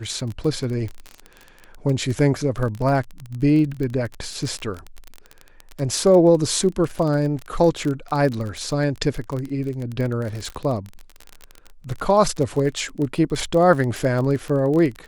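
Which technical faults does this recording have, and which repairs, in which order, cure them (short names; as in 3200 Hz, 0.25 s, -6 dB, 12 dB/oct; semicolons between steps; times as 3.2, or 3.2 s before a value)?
crackle 29/s -25 dBFS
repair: de-click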